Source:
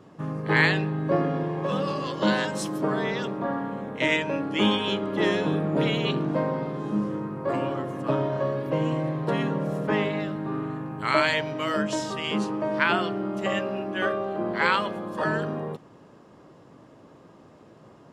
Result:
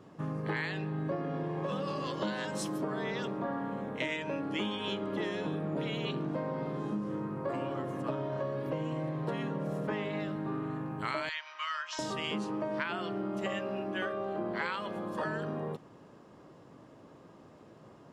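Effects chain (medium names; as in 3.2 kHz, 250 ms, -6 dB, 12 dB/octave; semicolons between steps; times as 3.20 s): 11.29–11.99 s: Chebyshev band-pass 1.1–6 kHz, order 3; compression 12:1, threshold -27 dBFS, peak gain reduction 12.5 dB; trim -3.5 dB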